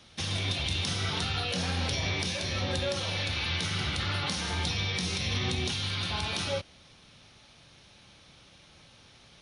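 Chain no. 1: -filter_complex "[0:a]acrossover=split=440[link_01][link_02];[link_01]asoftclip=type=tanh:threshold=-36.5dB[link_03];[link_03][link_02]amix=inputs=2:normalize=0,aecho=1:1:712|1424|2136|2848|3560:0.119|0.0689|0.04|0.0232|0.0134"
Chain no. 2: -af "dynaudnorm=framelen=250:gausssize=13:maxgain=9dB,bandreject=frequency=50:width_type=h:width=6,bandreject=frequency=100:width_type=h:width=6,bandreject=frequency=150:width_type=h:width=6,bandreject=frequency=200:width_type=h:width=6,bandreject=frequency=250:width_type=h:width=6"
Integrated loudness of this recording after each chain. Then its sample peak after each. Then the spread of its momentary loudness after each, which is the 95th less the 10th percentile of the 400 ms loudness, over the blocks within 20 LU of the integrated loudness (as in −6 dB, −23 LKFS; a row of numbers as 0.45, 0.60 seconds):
−31.0, −22.5 LKFS; −16.0, −7.5 dBFS; 17, 8 LU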